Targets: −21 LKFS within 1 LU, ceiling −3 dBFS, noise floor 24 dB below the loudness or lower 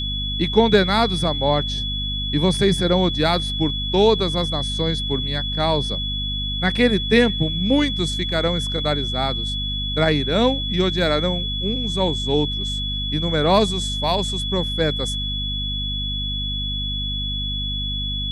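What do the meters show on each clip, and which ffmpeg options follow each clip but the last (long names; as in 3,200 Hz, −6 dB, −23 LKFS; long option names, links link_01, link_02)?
mains hum 50 Hz; hum harmonics up to 250 Hz; level of the hum −25 dBFS; interfering tone 3,400 Hz; level of the tone −25 dBFS; integrated loudness −20.5 LKFS; sample peak −2.0 dBFS; target loudness −21.0 LKFS
→ -af "bandreject=frequency=50:width_type=h:width=6,bandreject=frequency=100:width_type=h:width=6,bandreject=frequency=150:width_type=h:width=6,bandreject=frequency=200:width_type=h:width=6,bandreject=frequency=250:width_type=h:width=6"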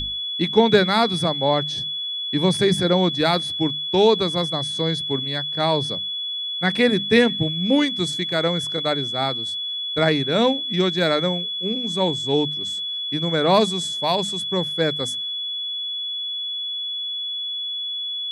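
mains hum none found; interfering tone 3,400 Hz; level of the tone −25 dBFS
→ -af "bandreject=frequency=3400:width=30"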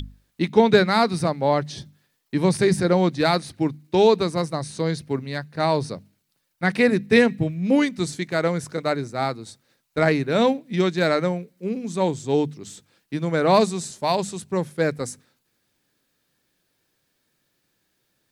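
interfering tone none found; integrated loudness −22.0 LKFS; sample peak −2.5 dBFS; target loudness −21.0 LKFS
→ -af "volume=1dB,alimiter=limit=-3dB:level=0:latency=1"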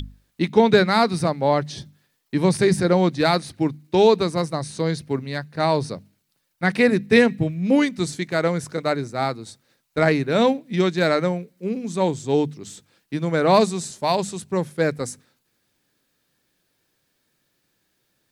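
integrated loudness −21.0 LKFS; sample peak −3.0 dBFS; background noise floor −71 dBFS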